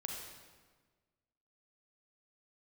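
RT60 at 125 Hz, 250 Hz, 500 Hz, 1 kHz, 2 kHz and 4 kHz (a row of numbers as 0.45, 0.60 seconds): 1.7, 1.6, 1.5, 1.4, 1.3, 1.1 seconds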